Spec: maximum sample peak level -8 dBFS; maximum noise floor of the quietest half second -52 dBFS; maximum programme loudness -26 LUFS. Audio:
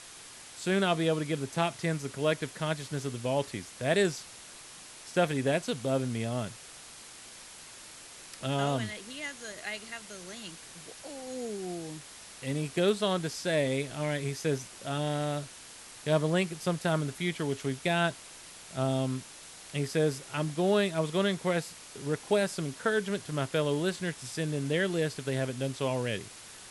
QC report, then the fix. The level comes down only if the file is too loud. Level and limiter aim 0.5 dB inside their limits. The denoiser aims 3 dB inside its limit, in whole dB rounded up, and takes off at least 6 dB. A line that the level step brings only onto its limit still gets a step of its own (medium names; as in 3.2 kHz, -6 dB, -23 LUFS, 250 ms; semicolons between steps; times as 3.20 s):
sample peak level -13.5 dBFS: pass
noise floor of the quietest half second -49 dBFS: fail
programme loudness -31.5 LUFS: pass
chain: noise reduction 6 dB, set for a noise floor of -49 dBFS